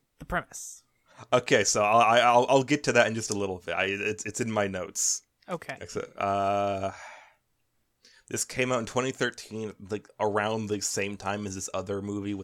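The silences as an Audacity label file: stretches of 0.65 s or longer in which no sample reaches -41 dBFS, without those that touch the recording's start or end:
7.180000	8.050000	silence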